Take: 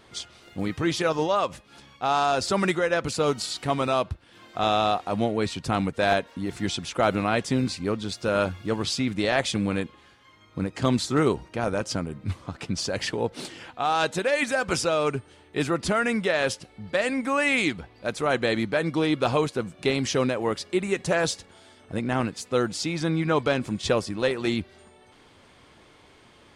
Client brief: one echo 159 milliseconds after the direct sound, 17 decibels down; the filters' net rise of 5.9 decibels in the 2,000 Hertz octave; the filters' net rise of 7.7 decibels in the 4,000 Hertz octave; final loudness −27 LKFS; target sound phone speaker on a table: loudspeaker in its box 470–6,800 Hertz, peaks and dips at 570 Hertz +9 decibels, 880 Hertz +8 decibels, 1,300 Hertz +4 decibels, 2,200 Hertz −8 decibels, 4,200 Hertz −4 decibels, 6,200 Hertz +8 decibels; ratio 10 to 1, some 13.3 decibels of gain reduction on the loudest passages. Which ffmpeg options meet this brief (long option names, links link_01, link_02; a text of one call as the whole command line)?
ffmpeg -i in.wav -af "equalizer=frequency=2000:width_type=o:gain=7.5,equalizer=frequency=4000:width_type=o:gain=9,acompressor=threshold=-25dB:ratio=10,highpass=frequency=470:width=0.5412,highpass=frequency=470:width=1.3066,equalizer=frequency=570:width_type=q:width=4:gain=9,equalizer=frequency=880:width_type=q:width=4:gain=8,equalizer=frequency=1300:width_type=q:width=4:gain=4,equalizer=frequency=2200:width_type=q:width=4:gain=-8,equalizer=frequency=4200:width_type=q:width=4:gain=-4,equalizer=frequency=6200:width_type=q:width=4:gain=8,lowpass=frequency=6800:width=0.5412,lowpass=frequency=6800:width=1.3066,aecho=1:1:159:0.141,volume=2dB" out.wav